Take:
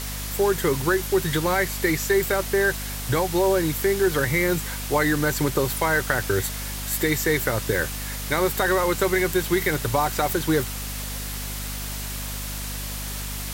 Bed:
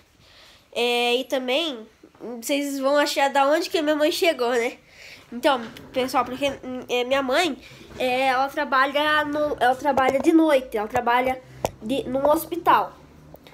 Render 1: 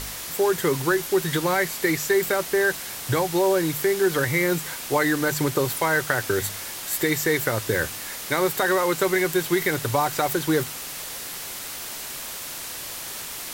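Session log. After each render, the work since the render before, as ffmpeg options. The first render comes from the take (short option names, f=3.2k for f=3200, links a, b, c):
-af "bandreject=f=50:t=h:w=4,bandreject=f=100:t=h:w=4,bandreject=f=150:t=h:w=4,bandreject=f=200:t=h:w=4,bandreject=f=250:t=h:w=4"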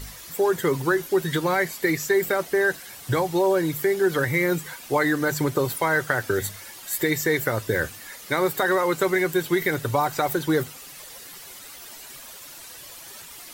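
-af "afftdn=nr=11:nf=-35"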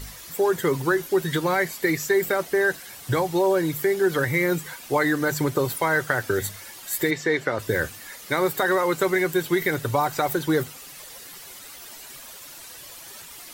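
-filter_complex "[0:a]asplit=3[a][b][c];[a]afade=t=out:st=7.1:d=0.02[d];[b]highpass=180,lowpass=4.7k,afade=t=in:st=7.1:d=0.02,afade=t=out:st=7.58:d=0.02[e];[c]afade=t=in:st=7.58:d=0.02[f];[d][e][f]amix=inputs=3:normalize=0"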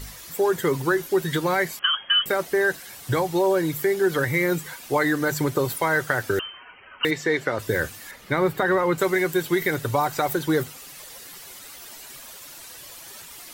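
-filter_complex "[0:a]asettb=1/sr,asplit=3[a][b][c];[a]atrim=end=1.794[d];[b]atrim=start=1.79:end=2.26,asetpts=PTS-STARTPTS,afade=t=in:d=0.004:c=qsin,afade=t=out:st=0.466:d=0.004:c=qsin,lowpass=f=2.9k:t=q:w=0.5098,lowpass=f=2.9k:t=q:w=0.6013,lowpass=f=2.9k:t=q:w=0.9,lowpass=f=2.9k:t=q:w=2.563,afreqshift=-3400[e];[c]atrim=start=2.256[f];[d][e]acrossfade=d=0.004:c1=hsin:c2=qsin[g];[g][f]acrossfade=d=0.004:c1=qsin:c2=hsin,asettb=1/sr,asplit=3[h][i][j];[h]atrim=end=6.394[k];[i]atrim=start=6.39:end=7.05,asetpts=PTS-STARTPTS,afade=t=in:d=0.004:c=qsin,afade=t=out:st=0.656:d=0.004:c=qsin,lowpass=f=2.7k:t=q:w=0.5098,lowpass=f=2.7k:t=q:w=0.6013,lowpass=f=2.7k:t=q:w=0.9,lowpass=f=2.7k:t=q:w=2.563,afreqshift=-3200[l];[j]atrim=start=7.046[m];[k][l]acrossfade=d=0.004:c1=hsin:c2=qsin[n];[n][m]acrossfade=d=0.004:c1=qsin:c2=hsin,asettb=1/sr,asplit=3[o][p][q];[o]atrim=end=8.114[r];[p]atrim=start=8.11:end=8.98,asetpts=PTS-STARTPTS,afade=t=in:d=0.004:c=qsin,afade=t=out:st=0.866:d=0.004:c=qsin,bass=f=250:g=7,treble=f=4k:g=-11[s];[q]atrim=start=8.976[t];[r][s]acrossfade=d=0.004:c1=hsin:c2=qsin[u];[u][t]acrossfade=d=0.004:c1=qsin:c2=hsin"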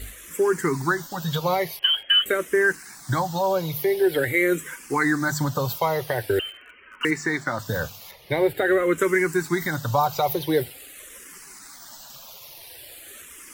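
-filter_complex "[0:a]asplit=2[a][b];[b]acrusher=bits=5:mix=0:aa=0.000001,volume=-9dB[c];[a][c]amix=inputs=2:normalize=0,asplit=2[d][e];[e]afreqshift=-0.46[f];[d][f]amix=inputs=2:normalize=1"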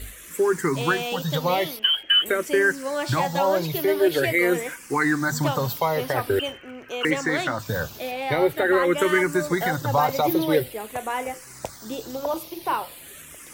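-filter_complex "[1:a]volume=-8dB[a];[0:a][a]amix=inputs=2:normalize=0"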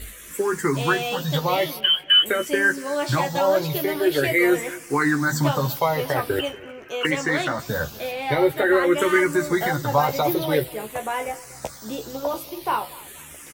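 -filter_complex "[0:a]asplit=2[a][b];[b]adelay=14,volume=-5dB[c];[a][c]amix=inputs=2:normalize=0,asplit=2[d][e];[e]adelay=239,lowpass=f=2.1k:p=1,volume=-19.5dB,asplit=2[f][g];[g]adelay=239,lowpass=f=2.1k:p=1,volume=0.36,asplit=2[h][i];[i]adelay=239,lowpass=f=2.1k:p=1,volume=0.36[j];[d][f][h][j]amix=inputs=4:normalize=0"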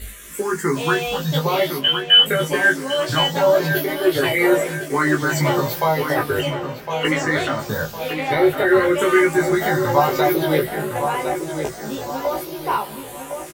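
-filter_complex "[0:a]asplit=2[a][b];[b]adelay=19,volume=-2.5dB[c];[a][c]amix=inputs=2:normalize=0,asplit=2[d][e];[e]adelay=1059,lowpass=f=2.7k:p=1,volume=-7dB,asplit=2[f][g];[g]adelay=1059,lowpass=f=2.7k:p=1,volume=0.42,asplit=2[h][i];[i]adelay=1059,lowpass=f=2.7k:p=1,volume=0.42,asplit=2[j][k];[k]adelay=1059,lowpass=f=2.7k:p=1,volume=0.42,asplit=2[l][m];[m]adelay=1059,lowpass=f=2.7k:p=1,volume=0.42[n];[d][f][h][j][l][n]amix=inputs=6:normalize=0"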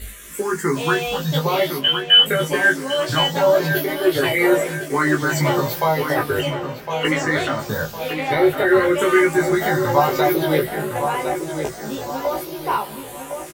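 -af anull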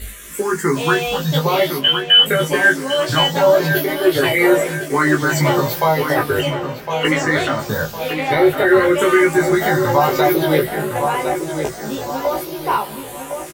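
-af "volume=3dB,alimiter=limit=-3dB:level=0:latency=1"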